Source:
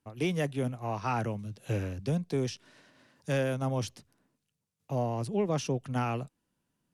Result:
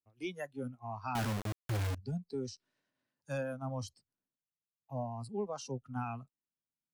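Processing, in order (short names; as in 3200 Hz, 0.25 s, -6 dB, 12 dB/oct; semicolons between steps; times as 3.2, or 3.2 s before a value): spectral noise reduction 18 dB; 1.15–1.95 companded quantiser 2-bit; gain -6.5 dB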